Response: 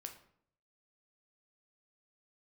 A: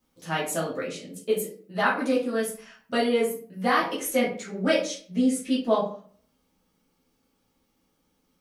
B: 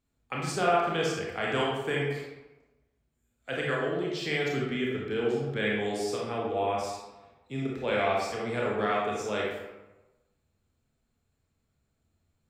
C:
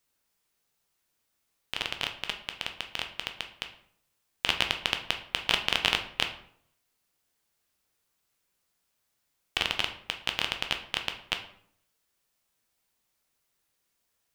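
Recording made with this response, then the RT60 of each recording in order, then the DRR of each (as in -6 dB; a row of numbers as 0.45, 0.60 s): C; 0.45, 1.1, 0.65 s; -7.0, -4.0, 4.5 dB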